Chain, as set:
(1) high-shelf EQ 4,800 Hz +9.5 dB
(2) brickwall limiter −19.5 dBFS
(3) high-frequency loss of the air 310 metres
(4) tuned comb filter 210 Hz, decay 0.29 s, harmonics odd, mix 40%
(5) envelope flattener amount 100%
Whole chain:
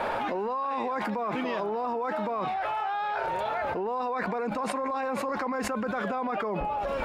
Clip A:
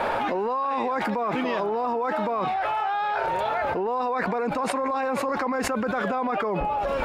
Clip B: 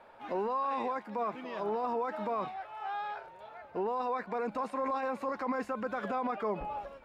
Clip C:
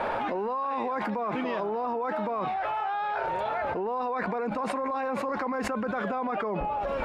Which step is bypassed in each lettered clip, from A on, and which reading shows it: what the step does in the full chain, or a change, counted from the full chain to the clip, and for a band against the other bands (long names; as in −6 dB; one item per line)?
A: 4, change in integrated loudness +4.0 LU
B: 5, change in crest factor −2.5 dB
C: 1, 4 kHz band −3.0 dB